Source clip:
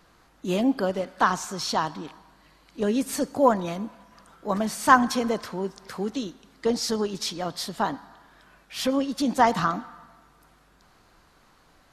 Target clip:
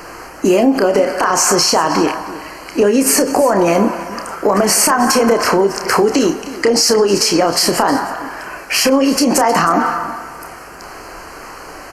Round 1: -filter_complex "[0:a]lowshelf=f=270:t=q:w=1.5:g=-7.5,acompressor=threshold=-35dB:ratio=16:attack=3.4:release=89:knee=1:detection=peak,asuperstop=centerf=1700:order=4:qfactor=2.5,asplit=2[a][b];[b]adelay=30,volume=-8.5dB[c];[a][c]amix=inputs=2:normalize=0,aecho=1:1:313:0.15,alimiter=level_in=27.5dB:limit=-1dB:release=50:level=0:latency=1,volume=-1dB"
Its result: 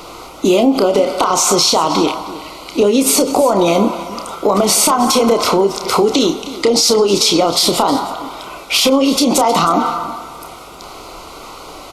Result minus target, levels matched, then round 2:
2000 Hz band -6.0 dB
-filter_complex "[0:a]lowshelf=f=270:t=q:w=1.5:g=-7.5,acompressor=threshold=-35dB:ratio=16:attack=3.4:release=89:knee=1:detection=peak,asuperstop=centerf=3600:order=4:qfactor=2.5,asplit=2[a][b];[b]adelay=30,volume=-8.5dB[c];[a][c]amix=inputs=2:normalize=0,aecho=1:1:313:0.15,alimiter=level_in=27.5dB:limit=-1dB:release=50:level=0:latency=1,volume=-1dB"

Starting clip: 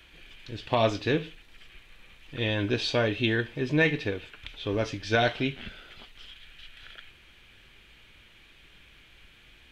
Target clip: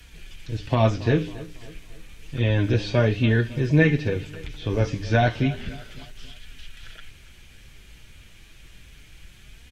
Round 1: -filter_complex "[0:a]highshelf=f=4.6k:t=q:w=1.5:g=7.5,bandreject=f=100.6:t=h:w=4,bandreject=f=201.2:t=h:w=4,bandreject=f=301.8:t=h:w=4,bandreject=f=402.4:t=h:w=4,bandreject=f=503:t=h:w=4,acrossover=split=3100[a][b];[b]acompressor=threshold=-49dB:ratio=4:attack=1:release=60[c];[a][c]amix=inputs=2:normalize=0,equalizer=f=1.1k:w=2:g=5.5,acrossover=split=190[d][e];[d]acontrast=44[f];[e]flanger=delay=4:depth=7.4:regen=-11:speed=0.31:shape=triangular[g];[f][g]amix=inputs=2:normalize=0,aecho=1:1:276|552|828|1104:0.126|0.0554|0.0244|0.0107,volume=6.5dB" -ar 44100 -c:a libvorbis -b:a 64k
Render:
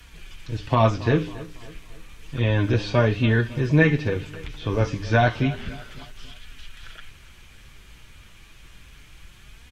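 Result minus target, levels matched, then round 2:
1000 Hz band +3.0 dB
-filter_complex "[0:a]highshelf=f=4.6k:t=q:w=1.5:g=7.5,bandreject=f=100.6:t=h:w=4,bandreject=f=201.2:t=h:w=4,bandreject=f=301.8:t=h:w=4,bandreject=f=402.4:t=h:w=4,bandreject=f=503:t=h:w=4,acrossover=split=3100[a][b];[b]acompressor=threshold=-49dB:ratio=4:attack=1:release=60[c];[a][c]amix=inputs=2:normalize=0,equalizer=f=1.1k:w=2:g=-2,acrossover=split=190[d][e];[d]acontrast=44[f];[e]flanger=delay=4:depth=7.4:regen=-11:speed=0.31:shape=triangular[g];[f][g]amix=inputs=2:normalize=0,aecho=1:1:276|552|828|1104:0.126|0.0554|0.0244|0.0107,volume=6.5dB" -ar 44100 -c:a libvorbis -b:a 64k

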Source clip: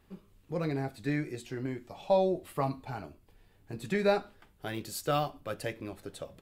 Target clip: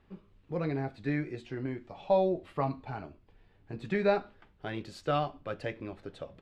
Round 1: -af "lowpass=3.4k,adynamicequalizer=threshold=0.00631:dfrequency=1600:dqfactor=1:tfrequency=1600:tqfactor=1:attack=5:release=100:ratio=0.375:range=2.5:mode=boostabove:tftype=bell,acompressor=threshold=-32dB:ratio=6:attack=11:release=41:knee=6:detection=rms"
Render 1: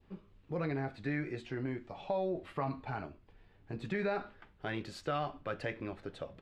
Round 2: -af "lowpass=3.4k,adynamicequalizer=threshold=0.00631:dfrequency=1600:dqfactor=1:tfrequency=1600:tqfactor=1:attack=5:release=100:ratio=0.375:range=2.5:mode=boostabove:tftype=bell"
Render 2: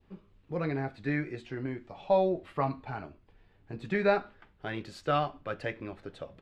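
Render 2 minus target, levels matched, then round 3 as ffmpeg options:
2000 Hz band +3.0 dB
-af "lowpass=3.4k"

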